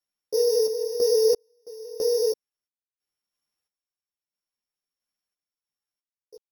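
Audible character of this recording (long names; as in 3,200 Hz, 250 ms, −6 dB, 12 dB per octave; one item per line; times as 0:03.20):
a buzz of ramps at a fixed pitch in blocks of 8 samples
sample-and-hold tremolo 3 Hz, depth 100%
a shimmering, thickened sound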